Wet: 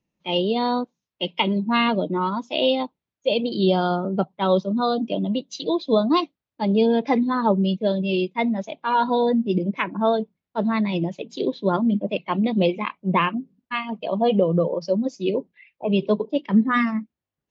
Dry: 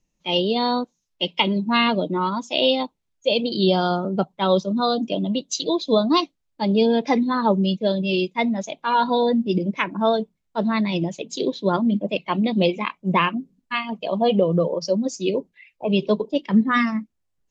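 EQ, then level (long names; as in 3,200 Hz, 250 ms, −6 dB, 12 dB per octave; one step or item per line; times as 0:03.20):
high-pass filter 85 Hz
high-frequency loss of the air 190 metres
0.0 dB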